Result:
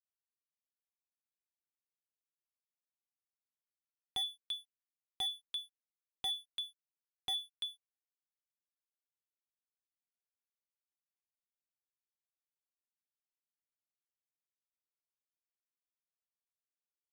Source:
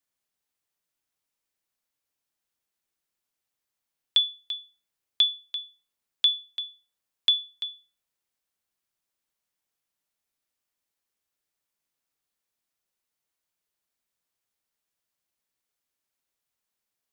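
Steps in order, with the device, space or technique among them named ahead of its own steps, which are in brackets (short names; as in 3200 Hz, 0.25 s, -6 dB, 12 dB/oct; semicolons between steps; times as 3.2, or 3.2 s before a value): early transistor amplifier (crossover distortion -52.5 dBFS; slew limiter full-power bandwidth 130 Hz); gain -5.5 dB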